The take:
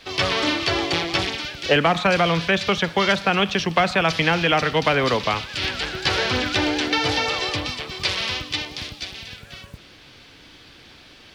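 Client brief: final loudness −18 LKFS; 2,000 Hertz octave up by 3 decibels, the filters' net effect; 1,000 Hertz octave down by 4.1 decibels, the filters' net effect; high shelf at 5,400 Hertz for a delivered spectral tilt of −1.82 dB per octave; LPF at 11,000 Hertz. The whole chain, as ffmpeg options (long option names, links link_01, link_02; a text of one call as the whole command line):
ffmpeg -i in.wav -af "lowpass=11000,equalizer=frequency=1000:width_type=o:gain=-8,equalizer=frequency=2000:width_type=o:gain=6.5,highshelf=frequency=5400:gain=-3.5,volume=2dB" out.wav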